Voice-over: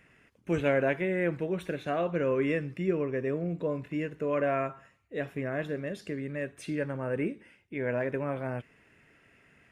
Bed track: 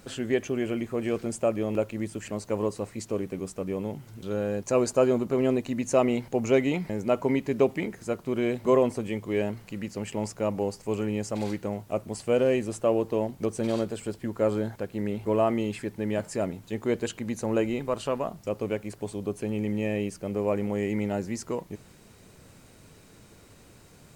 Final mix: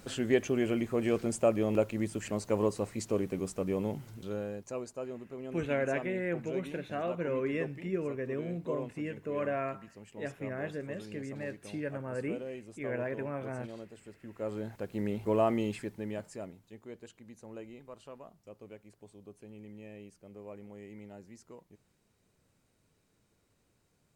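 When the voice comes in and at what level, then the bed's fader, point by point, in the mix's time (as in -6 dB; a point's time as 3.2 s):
5.05 s, -5.0 dB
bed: 4.04 s -1 dB
4.92 s -18 dB
14.11 s -18 dB
14.95 s -3.5 dB
15.69 s -3.5 dB
16.86 s -20 dB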